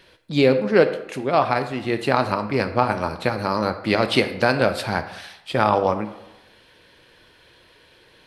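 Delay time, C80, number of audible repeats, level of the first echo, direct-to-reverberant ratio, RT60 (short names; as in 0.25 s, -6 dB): none, 13.5 dB, none, none, 9.0 dB, 0.95 s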